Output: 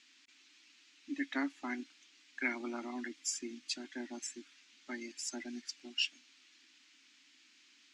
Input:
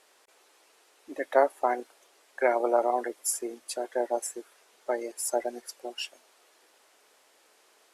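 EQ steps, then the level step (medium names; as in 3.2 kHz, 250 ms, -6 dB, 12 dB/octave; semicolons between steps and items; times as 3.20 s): FFT filter 140 Hz 0 dB, 280 Hz +13 dB, 480 Hz -26 dB, 2.4 kHz +10 dB, 4.4 kHz +9 dB, 6.9 kHz +5 dB, 11 kHz -23 dB; -6.5 dB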